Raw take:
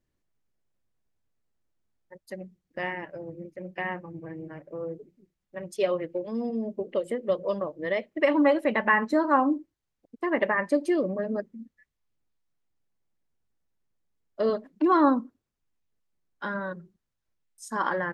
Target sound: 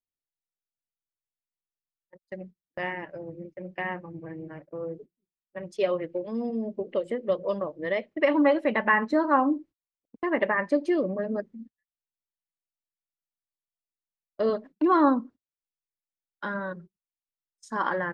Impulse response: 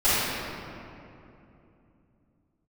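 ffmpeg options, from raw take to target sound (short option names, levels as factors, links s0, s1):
-af "agate=range=0.0562:threshold=0.00562:ratio=16:detection=peak,lowpass=5300"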